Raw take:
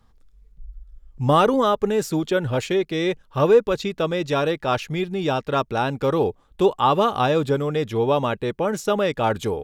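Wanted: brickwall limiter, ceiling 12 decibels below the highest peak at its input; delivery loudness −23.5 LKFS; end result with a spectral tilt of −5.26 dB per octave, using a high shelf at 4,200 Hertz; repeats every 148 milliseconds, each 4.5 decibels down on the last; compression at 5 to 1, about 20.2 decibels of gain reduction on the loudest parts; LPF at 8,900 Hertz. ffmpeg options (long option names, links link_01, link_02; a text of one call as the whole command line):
ffmpeg -i in.wav -af "lowpass=8900,highshelf=frequency=4200:gain=-3.5,acompressor=threshold=-35dB:ratio=5,alimiter=level_in=11dB:limit=-24dB:level=0:latency=1,volume=-11dB,aecho=1:1:148|296|444|592|740|888|1036|1184|1332:0.596|0.357|0.214|0.129|0.0772|0.0463|0.0278|0.0167|0.01,volume=18.5dB" out.wav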